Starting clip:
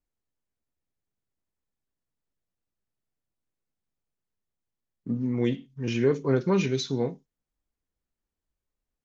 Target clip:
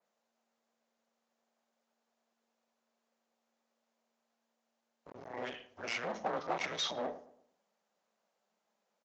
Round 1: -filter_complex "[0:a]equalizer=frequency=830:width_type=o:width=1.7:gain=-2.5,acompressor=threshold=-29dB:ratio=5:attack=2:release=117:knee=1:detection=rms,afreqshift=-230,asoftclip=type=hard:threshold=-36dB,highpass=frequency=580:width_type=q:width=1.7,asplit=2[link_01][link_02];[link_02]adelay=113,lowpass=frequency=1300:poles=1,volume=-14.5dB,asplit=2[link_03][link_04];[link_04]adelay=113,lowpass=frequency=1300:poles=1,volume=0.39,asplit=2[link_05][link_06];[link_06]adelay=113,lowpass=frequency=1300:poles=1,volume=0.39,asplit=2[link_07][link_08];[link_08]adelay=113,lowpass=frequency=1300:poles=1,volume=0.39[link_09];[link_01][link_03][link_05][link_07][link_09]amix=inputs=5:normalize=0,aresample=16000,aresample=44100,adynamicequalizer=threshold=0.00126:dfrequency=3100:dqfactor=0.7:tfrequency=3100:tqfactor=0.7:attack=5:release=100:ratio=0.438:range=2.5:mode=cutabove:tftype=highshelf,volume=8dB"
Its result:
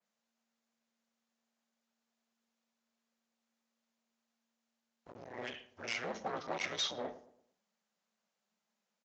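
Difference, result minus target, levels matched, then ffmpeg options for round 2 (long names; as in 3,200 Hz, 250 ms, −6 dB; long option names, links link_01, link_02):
1,000 Hz band −2.5 dB
-filter_complex "[0:a]equalizer=frequency=830:width_type=o:width=1.7:gain=7,acompressor=threshold=-29dB:ratio=5:attack=2:release=117:knee=1:detection=rms,afreqshift=-230,asoftclip=type=hard:threshold=-36dB,highpass=frequency=580:width_type=q:width=1.7,asplit=2[link_01][link_02];[link_02]adelay=113,lowpass=frequency=1300:poles=1,volume=-14.5dB,asplit=2[link_03][link_04];[link_04]adelay=113,lowpass=frequency=1300:poles=1,volume=0.39,asplit=2[link_05][link_06];[link_06]adelay=113,lowpass=frequency=1300:poles=1,volume=0.39,asplit=2[link_07][link_08];[link_08]adelay=113,lowpass=frequency=1300:poles=1,volume=0.39[link_09];[link_01][link_03][link_05][link_07][link_09]amix=inputs=5:normalize=0,aresample=16000,aresample=44100,adynamicequalizer=threshold=0.00126:dfrequency=3100:dqfactor=0.7:tfrequency=3100:tqfactor=0.7:attack=5:release=100:ratio=0.438:range=2.5:mode=cutabove:tftype=highshelf,volume=8dB"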